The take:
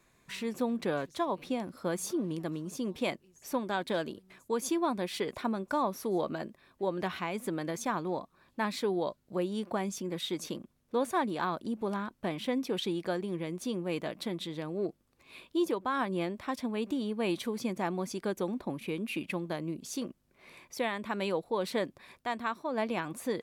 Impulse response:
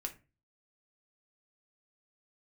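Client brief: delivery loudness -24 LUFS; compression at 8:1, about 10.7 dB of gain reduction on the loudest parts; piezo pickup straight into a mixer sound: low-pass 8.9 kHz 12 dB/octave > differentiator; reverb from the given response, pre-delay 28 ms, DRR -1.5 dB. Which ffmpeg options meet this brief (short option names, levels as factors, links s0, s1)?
-filter_complex "[0:a]acompressor=threshold=0.0141:ratio=8,asplit=2[s0][s1];[1:a]atrim=start_sample=2205,adelay=28[s2];[s1][s2]afir=irnorm=-1:irlink=0,volume=1.33[s3];[s0][s3]amix=inputs=2:normalize=0,lowpass=8900,aderivative,volume=21.1"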